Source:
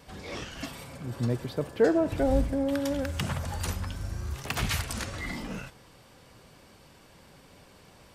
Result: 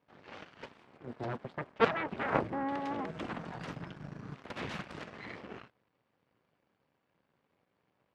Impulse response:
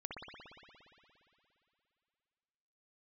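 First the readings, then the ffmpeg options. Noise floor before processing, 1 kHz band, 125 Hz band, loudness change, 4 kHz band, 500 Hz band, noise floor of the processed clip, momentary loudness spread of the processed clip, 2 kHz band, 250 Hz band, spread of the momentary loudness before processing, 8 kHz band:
-56 dBFS, +1.5 dB, -12.5 dB, -6.5 dB, -10.5 dB, -8.0 dB, -79 dBFS, 20 LU, -2.5 dB, -9.5 dB, 14 LU, -23.5 dB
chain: -af "aeval=exprs='0.266*(cos(1*acos(clip(val(0)/0.266,-1,1)))-cos(1*PI/2))+0.0944*(cos(3*acos(clip(val(0)/0.266,-1,1)))-cos(3*PI/2))+0.106*(cos(6*acos(clip(val(0)/0.266,-1,1)))-cos(6*PI/2))+0.00168*(cos(7*acos(clip(val(0)/0.266,-1,1)))-cos(7*PI/2))+0.119*(cos(8*acos(clip(val(0)/0.266,-1,1)))-cos(8*PI/2))':c=same,highpass=120,lowpass=2400,volume=0.708"

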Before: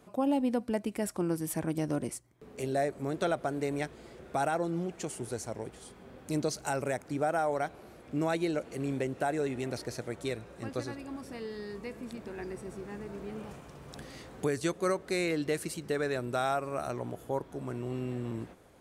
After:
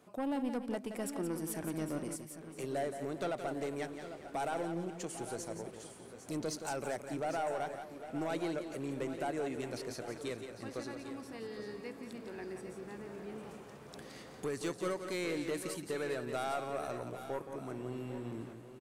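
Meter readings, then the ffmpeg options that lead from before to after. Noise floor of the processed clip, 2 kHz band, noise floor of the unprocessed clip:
-52 dBFS, -5.5 dB, -53 dBFS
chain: -filter_complex "[0:a]highpass=f=160:p=1,asoftclip=type=tanh:threshold=0.0473,asplit=2[s0][s1];[s1]aecho=0:1:172|402|800|818:0.376|0.158|0.237|0.126[s2];[s0][s2]amix=inputs=2:normalize=0,volume=0.668"

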